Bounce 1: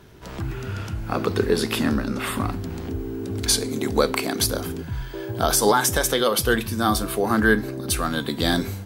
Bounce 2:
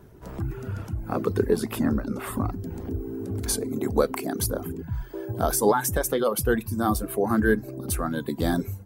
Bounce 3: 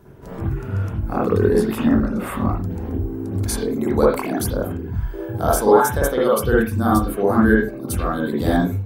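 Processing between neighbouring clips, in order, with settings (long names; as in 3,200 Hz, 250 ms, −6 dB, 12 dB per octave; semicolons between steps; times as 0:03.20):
reverb reduction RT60 0.69 s; parametric band 3,500 Hz −13.5 dB 2.3 octaves
convolution reverb, pre-delay 50 ms, DRR −5 dB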